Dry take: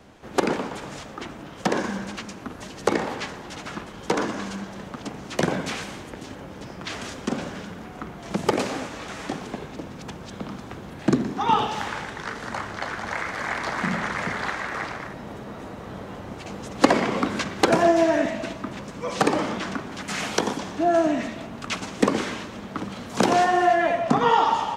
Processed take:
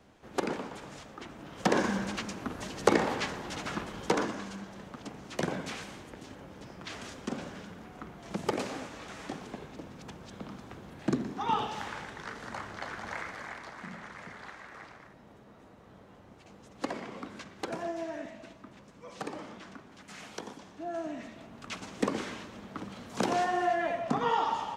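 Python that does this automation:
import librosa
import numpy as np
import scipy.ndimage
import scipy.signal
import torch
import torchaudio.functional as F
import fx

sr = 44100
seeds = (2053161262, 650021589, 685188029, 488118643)

y = fx.gain(x, sr, db=fx.line((1.27, -9.5), (1.78, -1.5), (3.96, -1.5), (4.44, -9.0), (13.19, -9.0), (13.73, -18.0), (20.77, -18.0), (21.96, -9.5)))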